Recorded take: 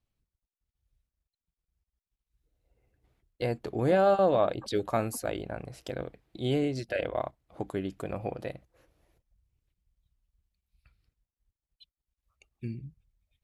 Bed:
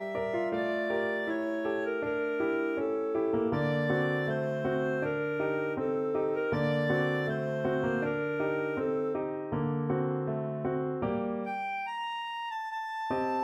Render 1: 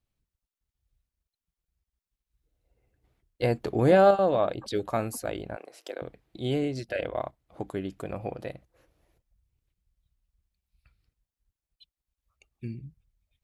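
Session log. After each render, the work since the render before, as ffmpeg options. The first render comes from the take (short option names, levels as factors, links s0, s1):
-filter_complex "[0:a]asettb=1/sr,asplit=3[s0][s1][s2];[s0]atrim=end=3.434[s3];[s1]atrim=start=3.43:end=4.11,asetpts=PTS-STARTPTS,afade=t=in:d=0.004:c=qsin,afade=t=out:st=0.676:d=0.004:c=qsin,acontrast=29[s4];[s2]atrim=start=4.106[s5];[s3][s4]acrossfade=d=0.004:c1=hsin:c2=qsin[s6];[s6][s5]acrossfade=d=0.004:c1=qsin:c2=hsin,asettb=1/sr,asplit=3[s7][s8][s9];[s7]atrim=end=5.564[s10];[s8]atrim=start=5.56:end=6.02,asetpts=PTS-STARTPTS,afade=t=in:d=0.004:c=qsin,afade=t=out:st=0.456:d=0.004:c=qsin,highpass=f=340:w=0.5412,highpass=f=340:w=1.3066[s11];[s9]atrim=start=6.016[s12];[s10][s11]acrossfade=d=0.004:c1=hsin:c2=qsin[s13];[s13][s12]acrossfade=d=0.004:c1=qsin:c2=hsin"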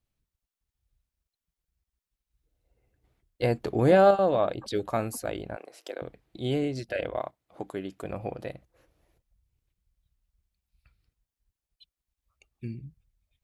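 -filter_complex "[0:a]asettb=1/sr,asplit=3[s0][s1][s2];[s0]atrim=end=7.184[s3];[s1]atrim=start=7.18:end=8.04,asetpts=PTS-STARTPTS,afade=t=in:d=0.004:c=qsin,afade=t=out:st=0.856:d=0.004:c=qsin,highpass=f=230:p=1[s4];[s2]atrim=start=8.036[s5];[s3][s4]acrossfade=d=0.004:c1=hsin:c2=qsin[s6];[s6][s5]acrossfade=d=0.004:c1=qsin:c2=hsin"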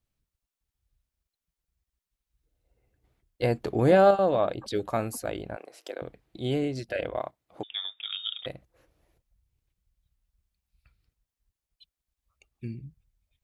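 -filter_complex "[0:a]asettb=1/sr,asplit=3[s0][s1][s2];[s0]atrim=end=7.634[s3];[s1]atrim=start=7.63:end=8.46,asetpts=PTS-STARTPTS,afade=t=in:d=0.004:c=qsin,afade=t=out:st=0.826:d=0.004:c=qsin,lowpass=f=3200:t=q:w=0.5098,lowpass=f=3200:t=q:w=0.6013,lowpass=f=3200:t=q:w=0.9,lowpass=f=3200:t=q:w=2.563,afreqshift=-3800[s4];[s2]atrim=start=8.456[s5];[s3][s4]acrossfade=d=0.004:c1=hsin:c2=qsin[s6];[s6][s5]acrossfade=d=0.004:c1=qsin:c2=hsin"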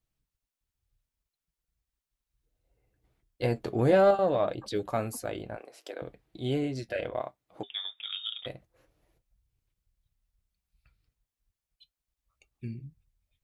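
-filter_complex "[0:a]asplit=2[s0][s1];[s1]asoftclip=type=tanh:threshold=0.106,volume=0.299[s2];[s0][s2]amix=inputs=2:normalize=0,flanger=delay=6.2:depth=2.4:regen=-60:speed=0.65:shape=sinusoidal"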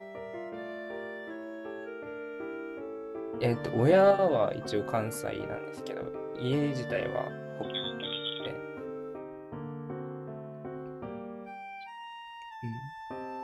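-filter_complex "[1:a]volume=0.355[s0];[0:a][s0]amix=inputs=2:normalize=0"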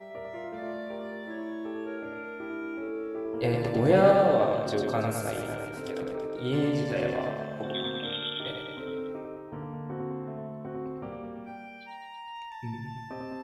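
-filter_complex "[0:a]asplit=2[s0][s1];[s1]adelay=27,volume=0.282[s2];[s0][s2]amix=inputs=2:normalize=0,aecho=1:1:100|210|331|464.1|610.5:0.631|0.398|0.251|0.158|0.1"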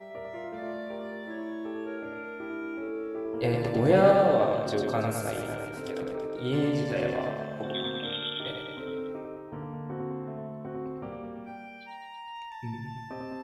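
-af anull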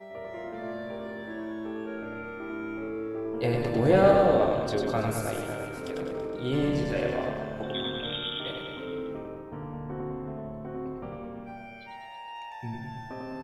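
-filter_complex "[0:a]asplit=7[s0][s1][s2][s3][s4][s5][s6];[s1]adelay=94,afreqshift=-110,volume=0.251[s7];[s2]adelay=188,afreqshift=-220,volume=0.143[s8];[s3]adelay=282,afreqshift=-330,volume=0.0813[s9];[s4]adelay=376,afreqshift=-440,volume=0.0468[s10];[s5]adelay=470,afreqshift=-550,volume=0.0266[s11];[s6]adelay=564,afreqshift=-660,volume=0.0151[s12];[s0][s7][s8][s9][s10][s11][s12]amix=inputs=7:normalize=0"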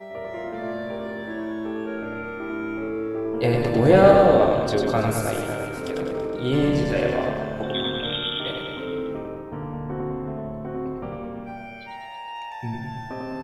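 -af "volume=2"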